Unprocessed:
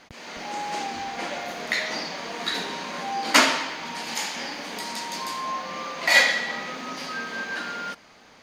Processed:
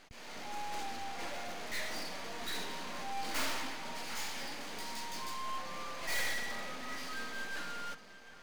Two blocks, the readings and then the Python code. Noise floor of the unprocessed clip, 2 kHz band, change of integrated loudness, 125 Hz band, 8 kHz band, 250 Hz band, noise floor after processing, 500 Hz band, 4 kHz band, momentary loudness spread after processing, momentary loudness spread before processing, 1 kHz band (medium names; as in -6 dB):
-52 dBFS, -15.5 dB, -14.0 dB, -8.0 dB, -11.5 dB, -13.0 dB, -53 dBFS, -13.0 dB, -14.0 dB, 7 LU, 15 LU, -12.5 dB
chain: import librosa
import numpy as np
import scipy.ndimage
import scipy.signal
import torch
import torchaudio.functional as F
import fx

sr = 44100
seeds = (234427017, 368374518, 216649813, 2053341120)

y = fx.echo_stepped(x, sr, ms=251, hz=210.0, octaves=1.4, feedback_pct=70, wet_db=-11)
y = fx.tube_stage(y, sr, drive_db=29.0, bias=0.8)
y = np.maximum(y, 0.0)
y = y * librosa.db_to_amplitude(2.0)